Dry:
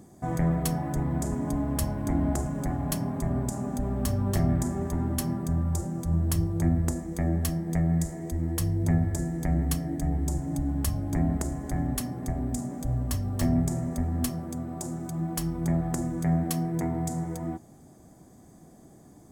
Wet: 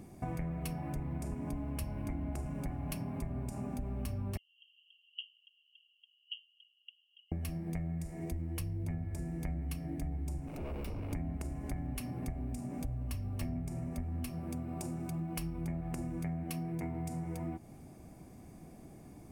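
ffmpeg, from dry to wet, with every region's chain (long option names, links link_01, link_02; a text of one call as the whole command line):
ffmpeg -i in.wav -filter_complex "[0:a]asettb=1/sr,asplit=3[link_01][link_02][link_03];[link_01]atrim=end=4.374[link_04];[link_02]atrim=start=4.37:end=7.32,asetpts=PTS-STARTPTS,afade=type=in:duration=0.004:curve=qsin,afade=type=out:start_time=2.946:duration=0.004:curve=qsin,asuperpass=centerf=3000:order=12:qfactor=6.5,acontrast=54[link_05];[link_03]atrim=start=7.316[link_06];[link_04][link_05]acrossfade=duration=0.004:curve1=hsin:curve2=qsin[link_07];[link_07][link_06]acrossfade=duration=0.004:curve1=qsin:curve2=hsin,asettb=1/sr,asplit=3[link_08][link_09][link_10];[link_08]atrim=end=10.474[link_11];[link_09]atrim=start=10.47:end=11.13,asetpts=PTS-STARTPTS,afade=type=in:duration=0.004:curve=qsin,afade=type=out:start_time=0.656:duration=0.004:curve=qsin,aeval=exprs='0.0355*(abs(mod(val(0)/0.0355+3,4)-2)-1)':channel_layout=same,acrossover=split=1300|6700[link_12][link_13][link_14];[link_12]acompressor=threshold=-37dB:ratio=4[link_15];[link_13]acompressor=threshold=-55dB:ratio=4[link_16];[link_14]acompressor=threshold=-56dB:ratio=4[link_17];[link_15][link_16][link_17]amix=inputs=3:normalize=0[link_18];[link_10]atrim=start=11.126[link_19];[link_11][link_18]acrossfade=duration=0.004:curve1=hsin:curve2=qsin[link_20];[link_20][link_19]acrossfade=duration=0.004:curve1=qsin:curve2=hsin,lowshelf=frequency=81:gain=8.5,acompressor=threshold=-34dB:ratio=6,superequalizer=12b=3.16:15b=0.501,volume=-1.5dB" out.wav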